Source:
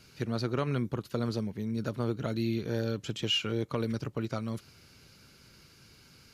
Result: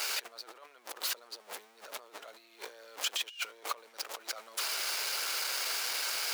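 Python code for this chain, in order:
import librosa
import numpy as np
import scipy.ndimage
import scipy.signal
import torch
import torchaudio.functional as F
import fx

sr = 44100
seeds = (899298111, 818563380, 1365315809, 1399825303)

y = x + 0.5 * 10.0 ** (-36.0 / 20.0) * np.sign(x)
y = fx.over_compress(y, sr, threshold_db=-37.0, ratio=-0.5)
y = scipy.signal.sosfilt(scipy.signal.butter(4, 570.0, 'highpass', fs=sr, output='sos'), y)
y = F.gain(torch.from_numpy(y), 2.5).numpy()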